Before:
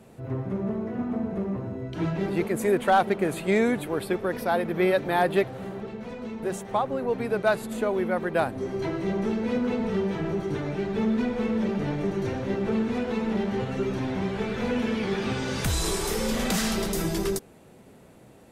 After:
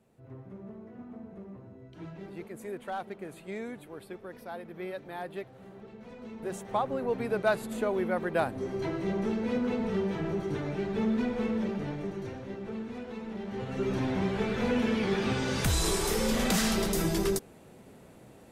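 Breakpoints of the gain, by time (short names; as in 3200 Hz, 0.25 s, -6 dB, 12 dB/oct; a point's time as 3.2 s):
5.45 s -16 dB
6.8 s -3.5 dB
11.45 s -3.5 dB
12.55 s -12 dB
13.38 s -12 dB
13.94 s -1 dB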